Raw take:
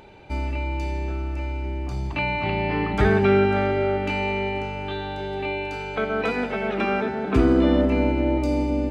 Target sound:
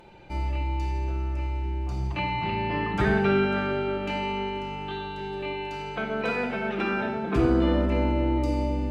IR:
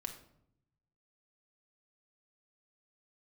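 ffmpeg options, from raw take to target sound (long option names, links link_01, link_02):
-filter_complex "[1:a]atrim=start_sample=2205,atrim=end_sample=4410,asetrate=30870,aresample=44100[link_01];[0:a][link_01]afir=irnorm=-1:irlink=0,volume=-3dB"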